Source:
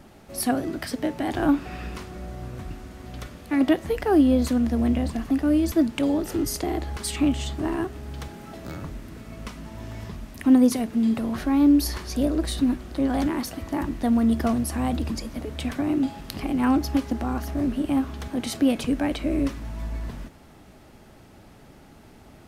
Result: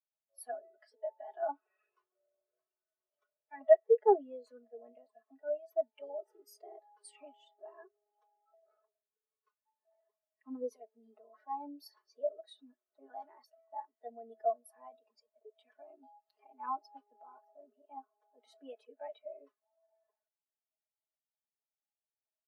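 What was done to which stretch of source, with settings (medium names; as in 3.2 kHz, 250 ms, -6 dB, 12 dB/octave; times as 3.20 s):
9.05–9.85 s: comb of notches 330 Hz
17.36–19.84 s: tape noise reduction on one side only decoder only
whole clip: high-pass 470 Hz 24 dB/octave; comb 4.7 ms, depth 80%; spectral contrast expander 2.5:1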